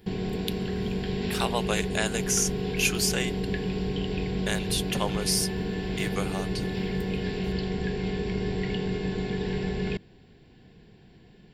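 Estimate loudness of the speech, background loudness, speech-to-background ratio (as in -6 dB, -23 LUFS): -29.5 LUFS, -30.5 LUFS, 1.0 dB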